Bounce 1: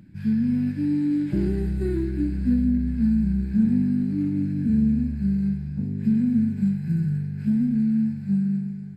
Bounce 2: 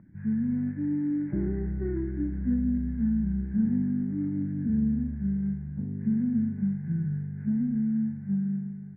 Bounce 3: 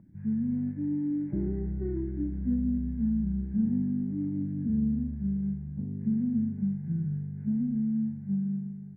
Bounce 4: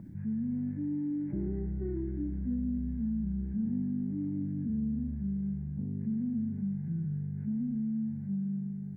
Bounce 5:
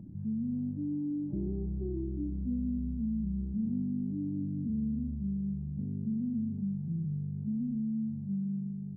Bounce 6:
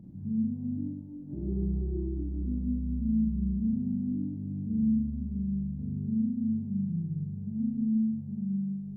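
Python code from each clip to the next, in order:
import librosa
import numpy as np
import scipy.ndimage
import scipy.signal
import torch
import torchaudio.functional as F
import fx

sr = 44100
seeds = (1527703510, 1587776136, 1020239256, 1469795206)

y1 = scipy.signal.sosfilt(scipy.signal.ellip(4, 1.0, 40, 2000.0, 'lowpass', fs=sr, output='sos'), x)
y1 = F.gain(torch.from_numpy(y1), -4.5).numpy()
y2 = fx.peak_eq(y1, sr, hz=1600.0, db=-11.0, octaves=1.1)
y2 = F.gain(torch.from_numpy(y2), -1.5).numpy()
y3 = fx.env_flatten(y2, sr, amount_pct=50)
y3 = F.gain(torch.from_numpy(y3), -6.5).numpy()
y4 = scipy.ndimage.gaussian_filter1d(y3, 10.0, mode='constant')
y5 = fx.rev_schroeder(y4, sr, rt60_s=1.3, comb_ms=32, drr_db=-3.5)
y5 = F.gain(torch.from_numpy(y5), -3.5).numpy()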